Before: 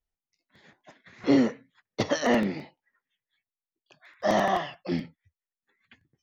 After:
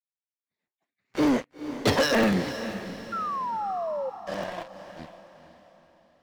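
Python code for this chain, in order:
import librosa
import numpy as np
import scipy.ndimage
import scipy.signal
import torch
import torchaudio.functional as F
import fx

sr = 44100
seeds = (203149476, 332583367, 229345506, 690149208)

p1 = fx.doppler_pass(x, sr, speed_mps=25, closest_m=3.3, pass_at_s=1.8)
p2 = fx.leveller(p1, sr, passes=5)
p3 = fx.spec_paint(p2, sr, seeds[0], shape='fall', start_s=3.12, length_s=0.98, low_hz=510.0, high_hz=1400.0, level_db=-28.0)
p4 = p3 + fx.echo_diffused(p3, sr, ms=484, feedback_pct=42, wet_db=-11.5, dry=0)
y = p4 * 10.0 ** (-2.0 / 20.0)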